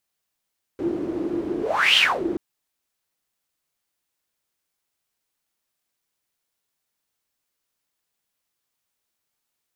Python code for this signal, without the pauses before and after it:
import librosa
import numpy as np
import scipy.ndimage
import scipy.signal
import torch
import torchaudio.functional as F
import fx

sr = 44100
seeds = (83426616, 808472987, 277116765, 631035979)

y = fx.whoosh(sr, seeds[0], length_s=1.58, peak_s=1.18, rise_s=0.4, fall_s=0.28, ends_hz=340.0, peak_hz=3100.0, q=9.1, swell_db=10.5)